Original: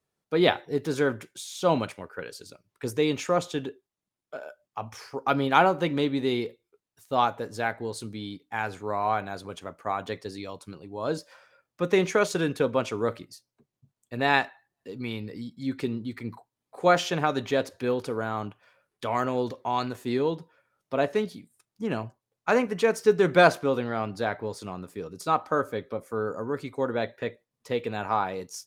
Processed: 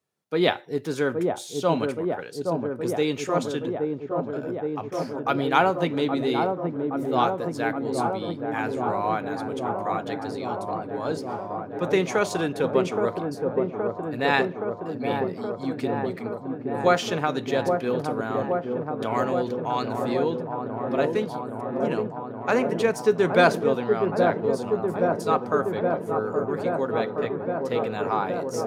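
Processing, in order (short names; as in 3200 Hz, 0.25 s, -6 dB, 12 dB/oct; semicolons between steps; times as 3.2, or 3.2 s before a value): HPF 100 Hz; dark delay 0.821 s, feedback 80%, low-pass 900 Hz, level -3 dB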